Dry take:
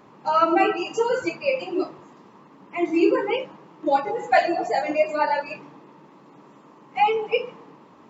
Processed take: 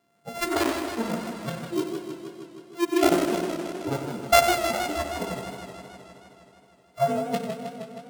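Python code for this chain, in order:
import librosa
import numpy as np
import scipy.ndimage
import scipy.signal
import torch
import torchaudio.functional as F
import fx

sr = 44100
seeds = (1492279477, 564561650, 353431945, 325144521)

p1 = np.r_[np.sort(x[:len(x) // 64 * 64].reshape(-1, 64), axis=1).ravel(), x[len(x) // 64 * 64:]]
p2 = fx.noise_reduce_blind(p1, sr, reduce_db=19)
p3 = p2 + fx.echo_feedback(p2, sr, ms=93, feedback_pct=57, wet_db=-10.0, dry=0)
y = fx.echo_warbled(p3, sr, ms=157, feedback_pct=73, rate_hz=2.8, cents=117, wet_db=-8)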